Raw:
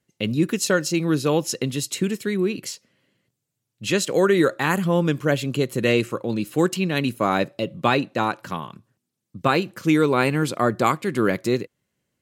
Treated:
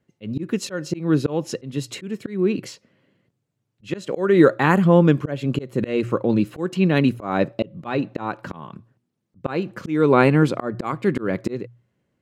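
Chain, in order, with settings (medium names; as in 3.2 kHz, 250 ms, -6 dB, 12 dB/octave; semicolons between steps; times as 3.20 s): low-pass 1.3 kHz 6 dB/octave; hum notches 60/120 Hz; slow attack 279 ms; trim +6.5 dB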